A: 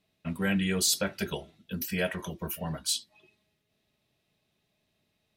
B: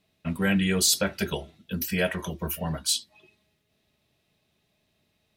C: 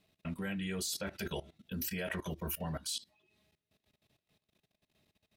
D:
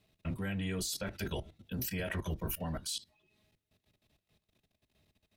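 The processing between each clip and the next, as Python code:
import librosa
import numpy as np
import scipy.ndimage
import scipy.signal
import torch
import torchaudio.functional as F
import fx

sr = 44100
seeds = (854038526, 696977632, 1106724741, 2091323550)

y1 = fx.peak_eq(x, sr, hz=75.0, db=6.5, octaves=0.24)
y1 = F.gain(torch.from_numpy(y1), 4.0).numpy()
y2 = fx.level_steps(y1, sr, step_db=18)
y2 = F.gain(torch.from_numpy(y2), -1.0).numpy()
y3 = fx.octave_divider(y2, sr, octaves=1, level_db=0.0)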